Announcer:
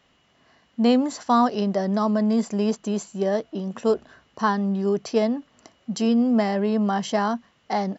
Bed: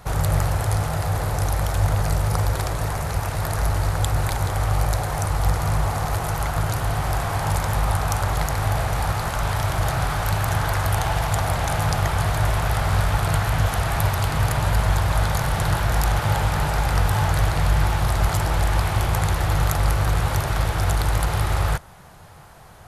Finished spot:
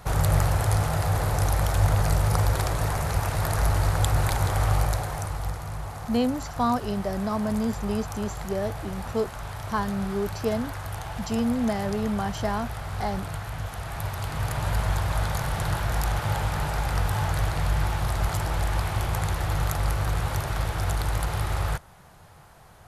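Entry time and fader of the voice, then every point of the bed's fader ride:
5.30 s, -5.5 dB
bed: 4.71 s -1 dB
5.67 s -12.5 dB
13.73 s -12.5 dB
14.72 s -5.5 dB

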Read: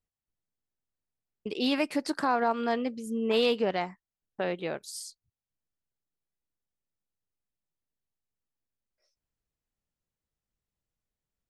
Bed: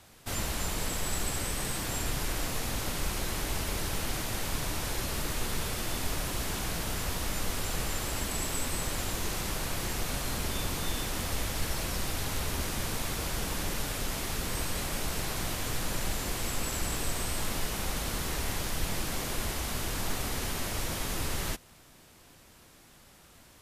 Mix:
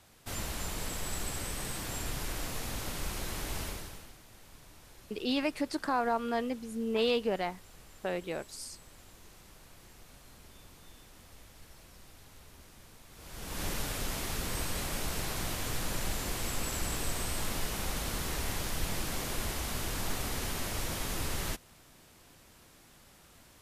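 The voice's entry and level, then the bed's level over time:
3.65 s, -3.5 dB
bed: 3.65 s -4.5 dB
4.17 s -22 dB
13.08 s -22 dB
13.64 s -2 dB

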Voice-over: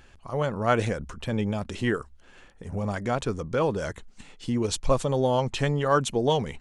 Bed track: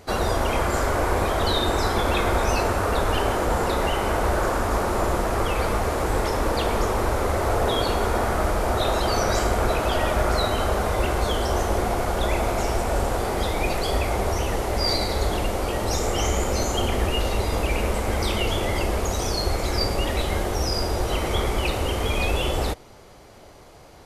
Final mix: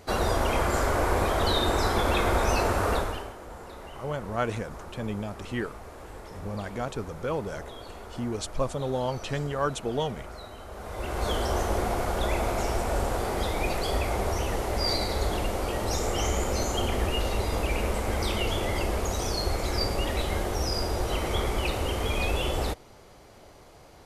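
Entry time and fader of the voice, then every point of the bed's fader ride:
3.70 s, -5.5 dB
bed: 2.94 s -2.5 dB
3.35 s -20 dB
10.67 s -20 dB
11.29 s -4 dB

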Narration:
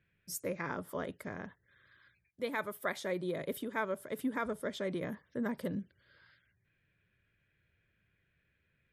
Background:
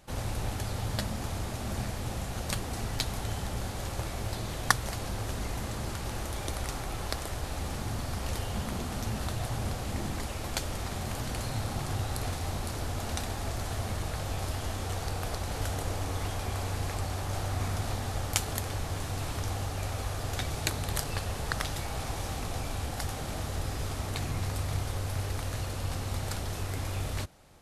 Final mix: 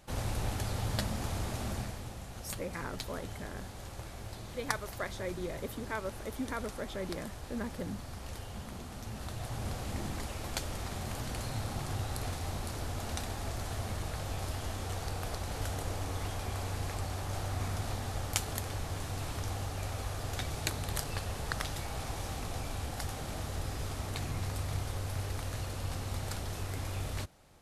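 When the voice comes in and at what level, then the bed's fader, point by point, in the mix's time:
2.15 s, -2.5 dB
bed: 1.63 s -1 dB
2.15 s -9.5 dB
9.01 s -9.5 dB
9.77 s -3.5 dB

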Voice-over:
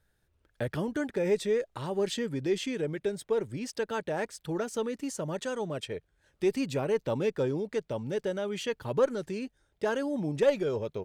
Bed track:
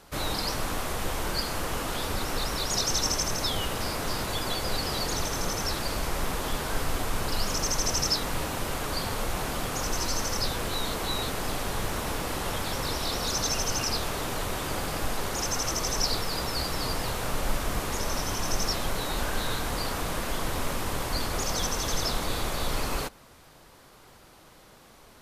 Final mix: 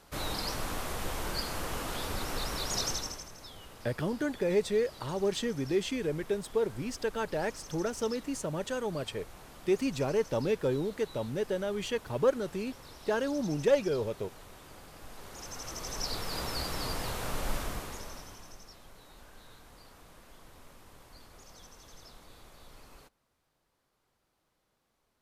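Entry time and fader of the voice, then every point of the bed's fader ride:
3.25 s, -0.5 dB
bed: 2.87 s -5 dB
3.31 s -20 dB
14.93 s -20 dB
16.38 s -5 dB
17.59 s -5 dB
18.64 s -24.5 dB

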